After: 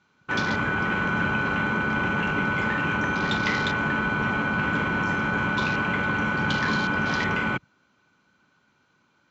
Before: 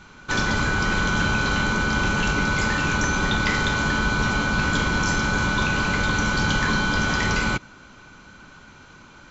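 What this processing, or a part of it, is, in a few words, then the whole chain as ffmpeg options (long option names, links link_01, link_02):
over-cleaned archive recording: -af "highpass=120,lowpass=6500,afwtdn=0.0282,volume=-1.5dB"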